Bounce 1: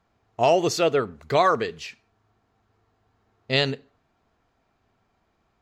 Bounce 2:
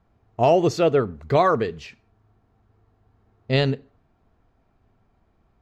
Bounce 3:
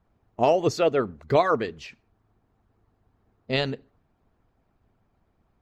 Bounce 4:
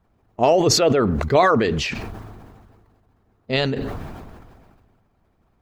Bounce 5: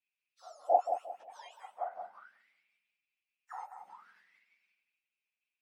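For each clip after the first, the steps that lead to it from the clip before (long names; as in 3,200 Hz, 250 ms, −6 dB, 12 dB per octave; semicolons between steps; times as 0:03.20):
spectral tilt −2.5 dB per octave
harmonic and percussive parts rebalanced harmonic −10 dB
level that may fall only so fast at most 30 dB per second; level +3.5 dB
frequency axis turned over on the octave scale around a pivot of 1,900 Hz; tape delay 179 ms, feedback 33%, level −6.5 dB, low-pass 2,500 Hz; envelope filter 720–2,500 Hz, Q 11, down, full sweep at −28 dBFS; level −2 dB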